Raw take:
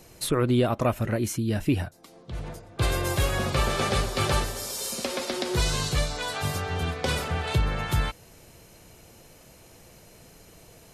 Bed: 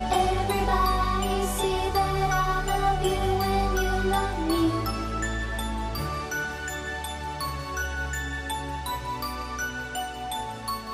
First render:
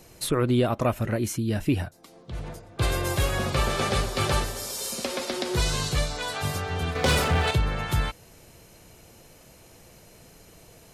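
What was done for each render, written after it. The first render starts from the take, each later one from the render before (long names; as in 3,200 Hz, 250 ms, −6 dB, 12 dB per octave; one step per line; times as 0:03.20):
0:06.95–0:07.51: leveller curve on the samples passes 2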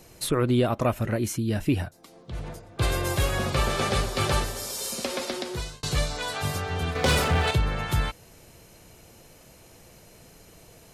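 0:05.25–0:05.83: fade out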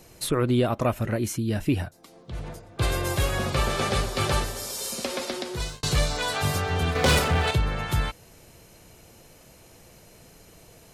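0:05.60–0:07.19: leveller curve on the samples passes 1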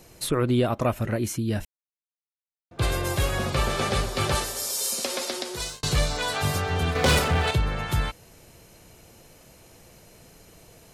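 0:01.65–0:02.71: silence
0:04.35–0:05.81: bass and treble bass −8 dB, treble +6 dB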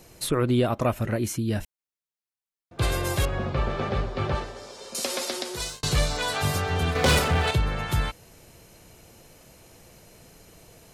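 0:03.25–0:04.95: head-to-tape spacing loss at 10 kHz 30 dB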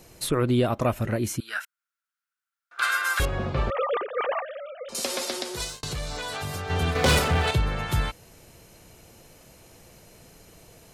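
0:01.40–0:03.20: high-pass with resonance 1,400 Hz, resonance Q 9.3
0:03.70–0:04.89: three sine waves on the formant tracks
0:05.64–0:06.70: downward compressor 5 to 1, threshold −29 dBFS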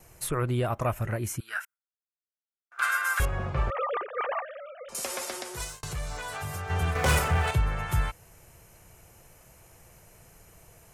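octave-band graphic EQ 250/500/4,000 Hz −10/−4/−11 dB
noise gate with hold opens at −48 dBFS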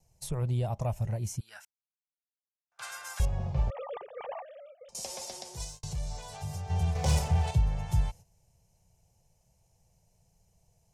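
noise gate −43 dBFS, range −11 dB
drawn EQ curve 190 Hz 0 dB, 290 Hz −14 dB, 500 Hz −7 dB, 860 Hz −4 dB, 1,300 Hz −21 dB, 5,600 Hz 0 dB, 13,000 Hz −13 dB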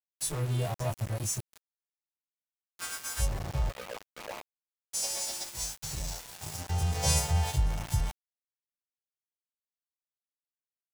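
every partial snapped to a pitch grid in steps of 2 semitones
centre clipping without the shift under −35.5 dBFS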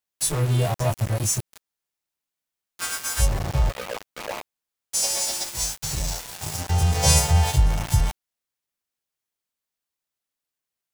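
level +9 dB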